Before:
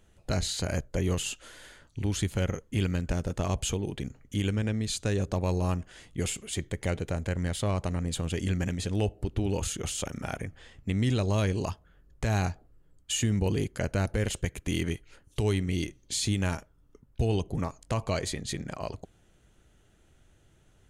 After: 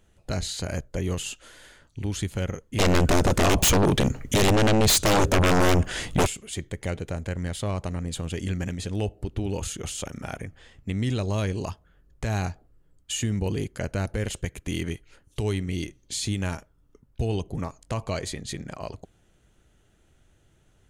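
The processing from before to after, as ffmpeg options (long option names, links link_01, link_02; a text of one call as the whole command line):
ffmpeg -i in.wav -filter_complex "[0:a]asplit=3[link_01][link_02][link_03];[link_01]afade=type=out:start_time=2.78:duration=0.02[link_04];[link_02]aeval=exprs='0.168*sin(PI/2*5.62*val(0)/0.168)':channel_layout=same,afade=type=in:start_time=2.78:duration=0.02,afade=type=out:start_time=6.25:duration=0.02[link_05];[link_03]afade=type=in:start_time=6.25:duration=0.02[link_06];[link_04][link_05][link_06]amix=inputs=3:normalize=0" out.wav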